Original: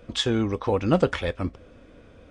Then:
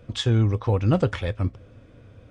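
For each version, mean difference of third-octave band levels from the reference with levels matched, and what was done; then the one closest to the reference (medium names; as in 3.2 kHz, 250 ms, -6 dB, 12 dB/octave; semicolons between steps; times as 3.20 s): 4.0 dB: peaking EQ 110 Hz +15 dB 0.72 oct; trim -3 dB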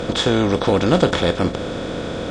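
10.5 dB: spectral levelling over time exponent 0.4; trim +2 dB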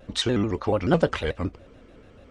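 2.0 dB: vibrato with a chosen wave square 6.9 Hz, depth 160 cents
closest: third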